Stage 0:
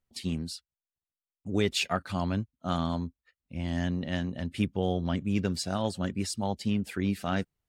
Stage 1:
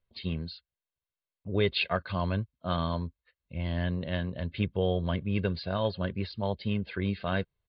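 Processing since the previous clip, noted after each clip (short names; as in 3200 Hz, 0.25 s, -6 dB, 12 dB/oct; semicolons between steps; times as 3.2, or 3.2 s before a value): steep low-pass 4500 Hz 96 dB/oct; comb 1.9 ms, depth 53%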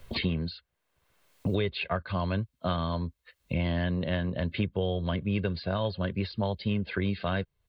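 three-band squash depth 100%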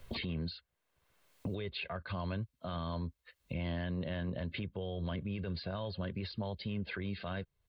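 limiter -26 dBFS, peak gain reduction 10.5 dB; gain -3.5 dB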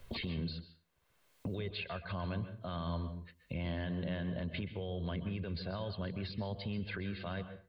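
reverb RT60 0.40 s, pre-delay 0.117 s, DRR 10.5 dB; gain -1 dB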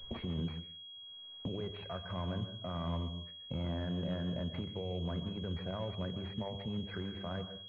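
de-hum 99.89 Hz, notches 39; pulse-width modulation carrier 3300 Hz; gain +1 dB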